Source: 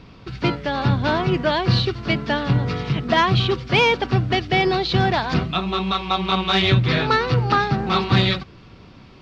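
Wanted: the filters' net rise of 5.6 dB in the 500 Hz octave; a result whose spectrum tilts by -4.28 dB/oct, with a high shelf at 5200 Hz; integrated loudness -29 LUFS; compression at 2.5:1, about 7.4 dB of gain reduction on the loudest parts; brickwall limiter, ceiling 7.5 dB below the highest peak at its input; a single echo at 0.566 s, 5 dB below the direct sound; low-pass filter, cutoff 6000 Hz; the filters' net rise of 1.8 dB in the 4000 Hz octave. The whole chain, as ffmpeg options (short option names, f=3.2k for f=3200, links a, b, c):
-af "lowpass=6k,equalizer=f=500:t=o:g=7.5,equalizer=f=4k:t=o:g=5,highshelf=f=5.2k:g=-6.5,acompressor=threshold=-20dB:ratio=2.5,alimiter=limit=-15dB:level=0:latency=1,aecho=1:1:566:0.562,volume=-5dB"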